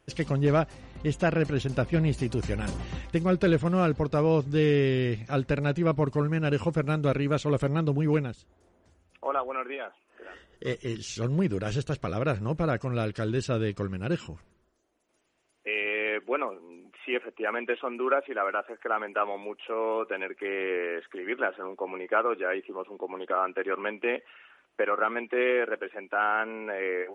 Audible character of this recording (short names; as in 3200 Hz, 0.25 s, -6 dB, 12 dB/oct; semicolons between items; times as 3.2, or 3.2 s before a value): noise floor -68 dBFS; spectral tilt -6.0 dB/oct